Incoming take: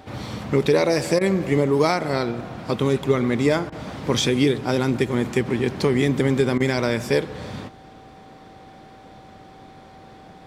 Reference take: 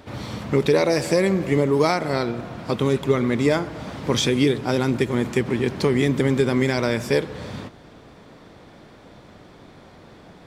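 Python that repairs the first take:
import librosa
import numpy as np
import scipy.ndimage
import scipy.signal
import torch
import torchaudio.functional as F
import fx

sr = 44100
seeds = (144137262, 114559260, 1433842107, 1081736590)

y = fx.notch(x, sr, hz=770.0, q=30.0)
y = fx.fix_interpolate(y, sr, at_s=(1.19, 3.7, 6.58), length_ms=20.0)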